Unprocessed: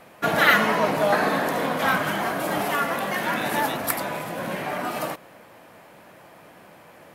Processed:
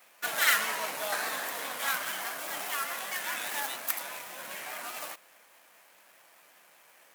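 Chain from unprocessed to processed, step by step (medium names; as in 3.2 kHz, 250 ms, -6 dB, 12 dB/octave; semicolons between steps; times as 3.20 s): median filter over 9 samples; vibrato 4.9 Hz 59 cents; differentiator; trim +5 dB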